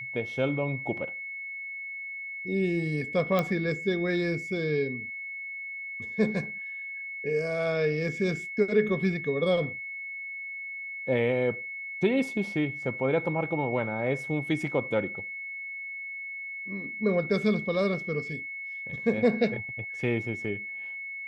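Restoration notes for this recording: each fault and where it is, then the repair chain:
whistle 2,200 Hz −35 dBFS
0:03.39: click −14 dBFS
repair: click removal
notch filter 2,200 Hz, Q 30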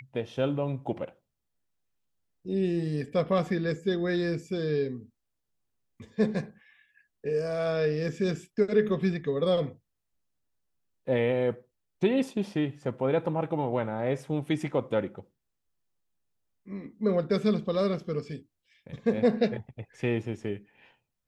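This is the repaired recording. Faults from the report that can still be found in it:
none of them is left

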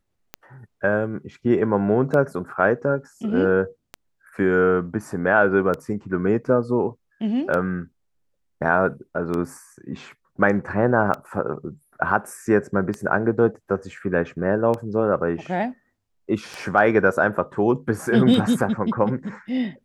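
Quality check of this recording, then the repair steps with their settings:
scratch tick 33 1/3 rpm −15 dBFS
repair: click removal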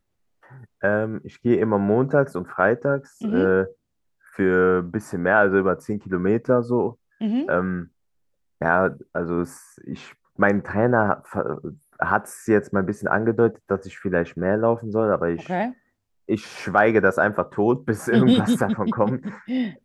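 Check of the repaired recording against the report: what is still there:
none of them is left

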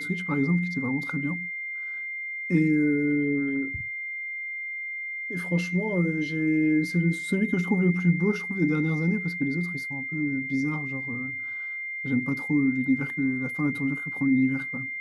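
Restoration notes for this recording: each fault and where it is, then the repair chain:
whistle 2,100 Hz −31 dBFS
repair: notch filter 2,100 Hz, Q 30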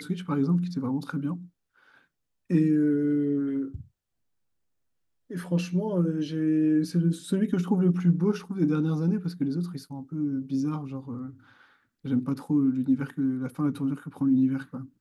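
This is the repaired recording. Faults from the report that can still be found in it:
none of them is left

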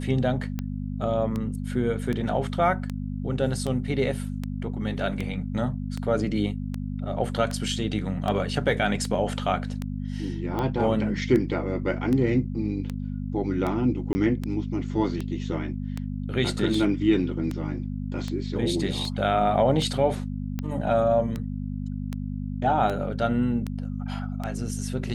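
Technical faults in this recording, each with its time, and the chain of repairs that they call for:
mains hum 50 Hz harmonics 5 −31 dBFS
scratch tick 78 rpm −17 dBFS
0:14.13–0:14.15: drop-out 20 ms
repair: click removal
hum removal 50 Hz, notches 5
repair the gap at 0:14.13, 20 ms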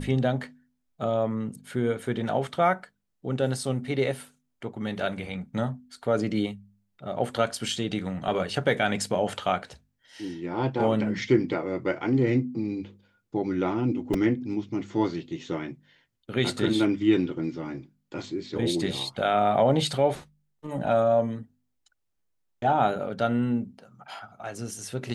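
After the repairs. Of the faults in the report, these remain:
none of them is left

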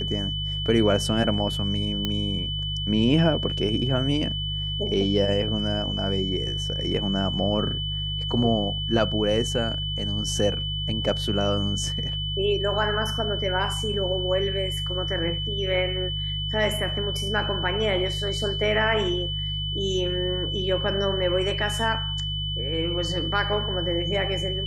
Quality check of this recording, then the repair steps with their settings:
mains hum 50 Hz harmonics 3 −31 dBFS
whistle 3,000 Hz −29 dBFS
0:02.05: click −12 dBFS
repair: click removal
hum removal 50 Hz, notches 3
notch filter 3,000 Hz, Q 30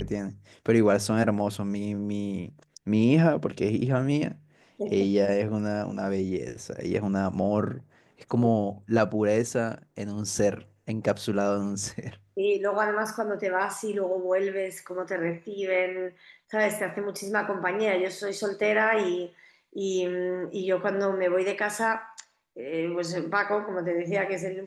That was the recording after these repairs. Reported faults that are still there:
none of them is left

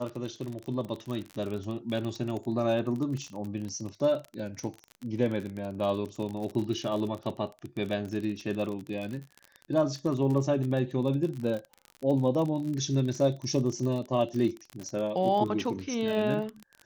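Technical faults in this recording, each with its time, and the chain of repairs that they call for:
surface crackle 40 per second −33 dBFS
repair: click removal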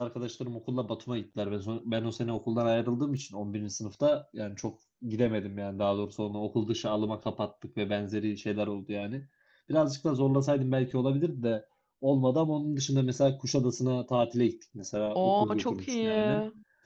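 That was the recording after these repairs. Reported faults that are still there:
none of them is left

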